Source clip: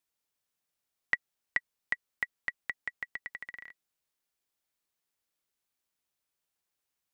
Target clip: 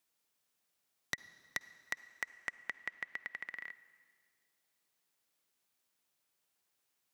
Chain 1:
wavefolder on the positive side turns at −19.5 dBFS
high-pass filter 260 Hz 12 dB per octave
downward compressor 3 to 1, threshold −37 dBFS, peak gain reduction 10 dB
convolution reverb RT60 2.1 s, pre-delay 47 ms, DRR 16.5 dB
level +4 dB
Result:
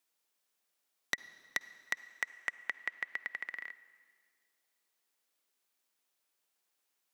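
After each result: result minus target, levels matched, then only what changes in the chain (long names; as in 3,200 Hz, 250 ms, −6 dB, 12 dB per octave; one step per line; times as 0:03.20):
125 Hz band −8.5 dB; downward compressor: peak gain reduction −4 dB
change: high-pass filter 110 Hz 12 dB per octave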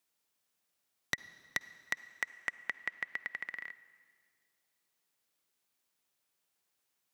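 downward compressor: peak gain reduction −4 dB
change: downward compressor 3 to 1, threshold −43 dBFS, peak gain reduction 14 dB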